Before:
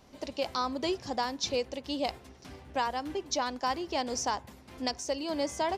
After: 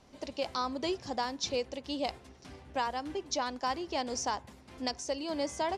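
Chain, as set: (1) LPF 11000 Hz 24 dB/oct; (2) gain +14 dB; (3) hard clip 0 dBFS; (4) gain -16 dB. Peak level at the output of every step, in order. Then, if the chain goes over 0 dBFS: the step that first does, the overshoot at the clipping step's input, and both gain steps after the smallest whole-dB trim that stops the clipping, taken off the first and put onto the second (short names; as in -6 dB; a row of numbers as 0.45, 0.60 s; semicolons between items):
-17.5, -3.5, -3.5, -19.5 dBFS; no overload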